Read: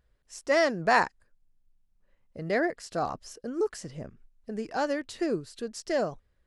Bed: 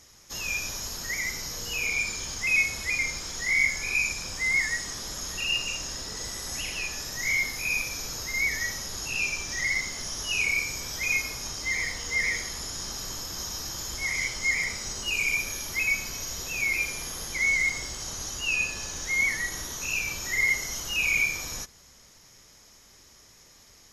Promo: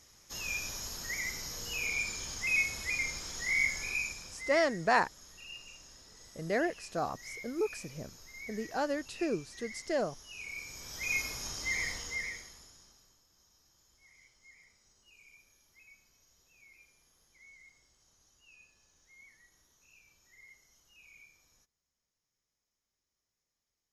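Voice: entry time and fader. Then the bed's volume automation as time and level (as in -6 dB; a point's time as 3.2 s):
4.00 s, -4.0 dB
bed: 3.81 s -6 dB
4.8 s -20 dB
10.33 s -20 dB
11.21 s -5 dB
11.94 s -5 dB
13.21 s -33.5 dB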